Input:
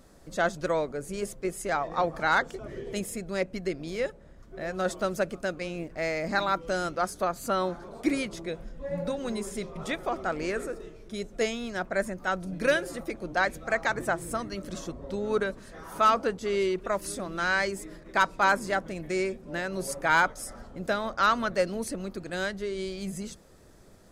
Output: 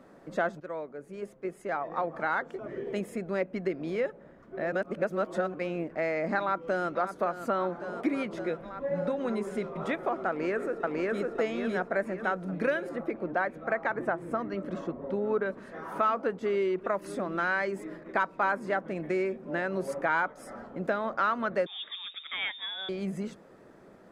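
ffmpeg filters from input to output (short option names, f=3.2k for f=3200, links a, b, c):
-filter_complex "[0:a]asplit=2[a][b];[b]afade=t=in:st=6.39:d=0.01,afade=t=out:st=6.89:d=0.01,aecho=0:1:560|1120|1680|2240|2800|3360|3920|4480|5040|5600|6160|6720:0.266073|0.199554|0.149666|0.112249|0.084187|0.0631403|0.0473552|0.0355164|0.0266373|0.019978|0.0149835|0.0112376[c];[a][c]amix=inputs=2:normalize=0,asplit=2[d][e];[e]afade=t=in:st=10.28:d=0.01,afade=t=out:st=11.31:d=0.01,aecho=0:1:550|1100|1650|2200|2750|3300:0.944061|0.424827|0.191172|0.0860275|0.0387124|0.0174206[f];[d][f]amix=inputs=2:normalize=0,asettb=1/sr,asplit=3[g][h][i];[g]atrim=end=12.894[j];[h]atrim=start=12.89:end=15.46,asetpts=PTS-STARTPTS,afade=t=in:d=0.004:c=qsin,afade=t=out:st=2.566:d=0.004:c=qsin,highshelf=f=3.8k:g=-10.5[k];[i]atrim=start=15.456[l];[j][k]acrossfade=d=0.004:c1=hsin:c2=qsin[m];[m][l]acrossfade=d=0.004:c1=qsin:c2=hsin,asettb=1/sr,asplit=3[n][o][p];[n]atrim=end=21.664[q];[o]atrim=start=21.66:end=22.89,asetpts=PTS-STARTPTS,afade=t=in:d=0.004:c=qsin,afade=t=out:st=1.226:d=0.004:c=qsin,lowpass=f=3.2k:t=q:w=0.5098,lowpass=f=3.2k:t=q:w=0.6013,lowpass=f=3.2k:t=q:w=0.9,lowpass=f=3.2k:t=q:w=2.563,afreqshift=-3800[r];[p]atrim=start=22.886[s];[q][r]acrossfade=d=0.004:c1=hsin:c2=qsin[t];[t][s]acrossfade=d=0.004:c1=qsin:c2=hsin,asplit=4[u][v][w][x];[u]atrim=end=0.6,asetpts=PTS-STARTPTS,afade=t=out:st=0.596:d=0.004:c=hsin:silence=0.158489[y];[v]atrim=start=0.6:end=4.722,asetpts=PTS-STARTPTS,afade=t=in:d=2.95:silence=0.158489[z];[w]atrim=start=4.718:end=5.542,asetpts=PTS-STARTPTS,areverse[aa];[x]atrim=start=5.538[ab];[y][z]concat=n=2:v=0:a=1[ac];[ac][aa]acrossfade=d=0.004:c1=hsin:c2=hsin[ad];[ad][ab]acrossfade=d=0.004:c1=hsin:c2=hsin,acrossover=split=150 2500:gain=0.0794 1 0.126[ae][af][ag];[ae][af][ag]amix=inputs=3:normalize=0,acompressor=threshold=-32dB:ratio=2.5,volume=4.5dB"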